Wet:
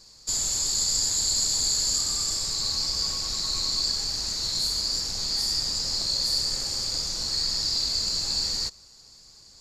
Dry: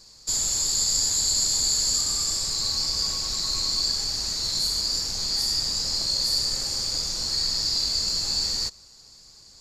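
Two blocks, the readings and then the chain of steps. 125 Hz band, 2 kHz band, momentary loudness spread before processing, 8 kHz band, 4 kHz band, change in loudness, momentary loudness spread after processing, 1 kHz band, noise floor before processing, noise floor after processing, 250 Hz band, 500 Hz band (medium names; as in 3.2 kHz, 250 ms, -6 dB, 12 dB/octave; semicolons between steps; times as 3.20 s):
-1.0 dB, -1.0 dB, 5 LU, -1.5 dB, -1.5 dB, -1.5 dB, 4 LU, -1.0 dB, -51 dBFS, -52 dBFS, -1.0 dB, -1.0 dB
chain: loudspeaker Doppler distortion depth 0.12 ms; trim -1 dB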